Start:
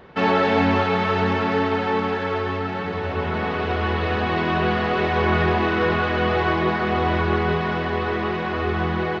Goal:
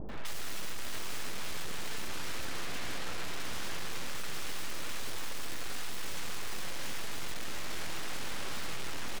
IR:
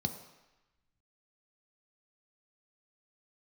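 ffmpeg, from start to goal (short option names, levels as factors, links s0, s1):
-filter_complex "[0:a]aeval=exprs='val(0)+0.00794*(sin(2*PI*50*n/s)+sin(2*PI*2*50*n/s)/2+sin(2*PI*3*50*n/s)/3+sin(2*PI*4*50*n/s)/4+sin(2*PI*5*50*n/s)/5)':c=same,aeval=exprs='abs(val(0))':c=same,aeval=exprs='(tanh(44.7*val(0)+0.35)-tanh(0.35))/44.7':c=same,acrossover=split=730[s0][s1];[s1]adelay=90[s2];[s0][s2]amix=inputs=2:normalize=0,volume=2.51"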